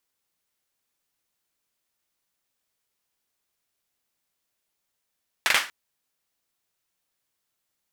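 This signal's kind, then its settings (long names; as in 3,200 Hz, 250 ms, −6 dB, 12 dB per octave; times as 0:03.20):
synth clap length 0.24 s, bursts 3, apart 42 ms, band 1,800 Hz, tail 0.31 s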